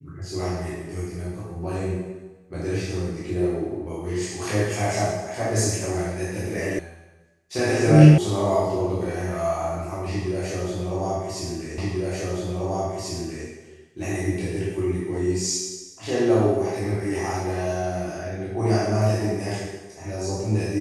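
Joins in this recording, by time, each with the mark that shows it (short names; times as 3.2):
6.79 sound cut off
8.18 sound cut off
11.78 repeat of the last 1.69 s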